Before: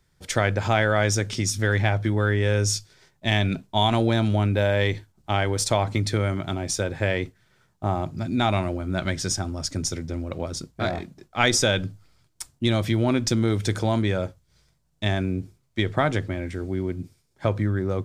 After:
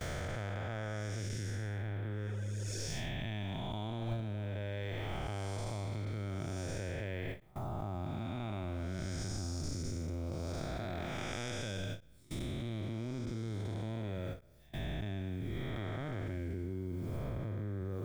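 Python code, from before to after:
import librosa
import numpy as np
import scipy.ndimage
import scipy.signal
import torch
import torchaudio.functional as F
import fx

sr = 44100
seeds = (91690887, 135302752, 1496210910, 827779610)

y = fx.spec_blur(x, sr, span_ms=458.0)
y = fx.dmg_noise_colour(y, sr, seeds[0], colour='blue', level_db=-67.0)
y = fx.spec_repair(y, sr, seeds[1], start_s=2.3, length_s=0.46, low_hz=300.0, high_hz=6200.0, source='both')
y = fx.dereverb_blind(y, sr, rt60_s=0.78)
y = fx.level_steps(y, sr, step_db=24)
y = fx.low_shelf(y, sr, hz=68.0, db=10.0)
y = fx.end_taper(y, sr, db_per_s=210.0)
y = y * 10.0 ** (7.5 / 20.0)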